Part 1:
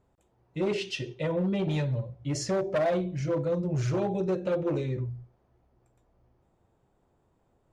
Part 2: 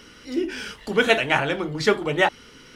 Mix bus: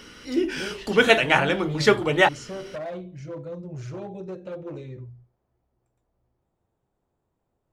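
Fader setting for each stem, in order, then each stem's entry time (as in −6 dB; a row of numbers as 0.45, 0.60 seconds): −7.5, +1.5 decibels; 0.00, 0.00 seconds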